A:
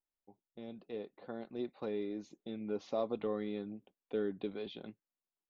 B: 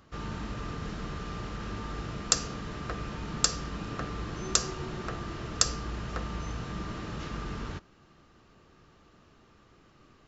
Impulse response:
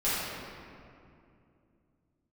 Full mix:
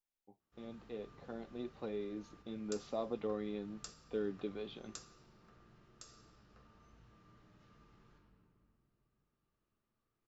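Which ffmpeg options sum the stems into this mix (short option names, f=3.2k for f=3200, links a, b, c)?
-filter_complex "[0:a]volume=1.5dB,asplit=2[a][b];[1:a]flanger=delay=5.4:depth=2.6:regen=-76:speed=0.38:shape=triangular,adelay=400,volume=-16.5dB,asplit=2[c][d];[d]volume=-17dB[e];[b]apad=whole_len=470876[f];[c][f]sidechaingate=range=-9dB:threshold=-60dB:ratio=16:detection=peak[g];[2:a]atrim=start_sample=2205[h];[e][h]afir=irnorm=-1:irlink=0[i];[a][g][i]amix=inputs=3:normalize=0,flanger=delay=7.9:depth=2:regen=-67:speed=1:shape=triangular"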